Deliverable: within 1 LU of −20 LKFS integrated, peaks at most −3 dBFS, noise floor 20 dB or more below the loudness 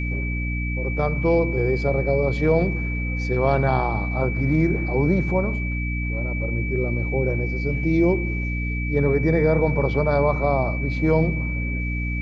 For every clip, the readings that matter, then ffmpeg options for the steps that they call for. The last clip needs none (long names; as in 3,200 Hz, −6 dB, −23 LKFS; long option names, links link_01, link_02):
mains hum 60 Hz; hum harmonics up to 300 Hz; level of the hum −23 dBFS; interfering tone 2,300 Hz; level of the tone −30 dBFS; integrated loudness −22.5 LKFS; sample peak −6.0 dBFS; target loudness −20.0 LKFS
→ -af "bandreject=frequency=60:width_type=h:width=6,bandreject=frequency=120:width_type=h:width=6,bandreject=frequency=180:width_type=h:width=6,bandreject=frequency=240:width_type=h:width=6,bandreject=frequency=300:width_type=h:width=6"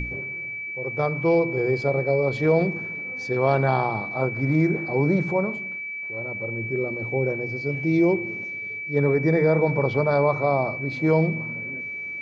mains hum none found; interfering tone 2,300 Hz; level of the tone −30 dBFS
→ -af "bandreject=frequency=2300:width=30"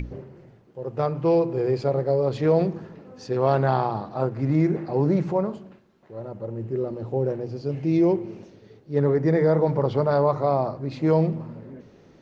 interfering tone none found; integrated loudness −23.5 LKFS; sample peak −7.5 dBFS; target loudness −20.0 LKFS
→ -af "volume=3.5dB"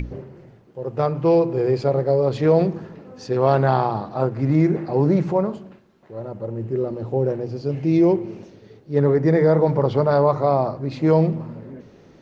integrated loudness −20.0 LKFS; sample peak −4.0 dBFS; background noise floor −51 dBFS